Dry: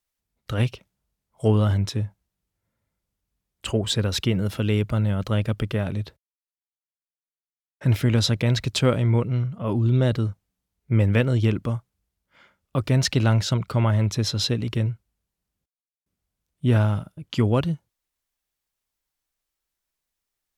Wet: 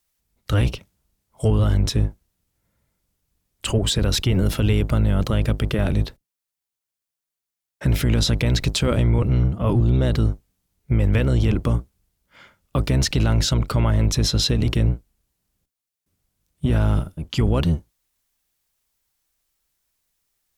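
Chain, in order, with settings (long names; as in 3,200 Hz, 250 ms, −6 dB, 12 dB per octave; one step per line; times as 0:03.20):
sub-octave generator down 1 octave, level −1 dB
high-shelf EQ 4,800 Hz +5 dB
brickwall limiter −17.5 dBFS, peak gain reduction 11 dB
level +6 dB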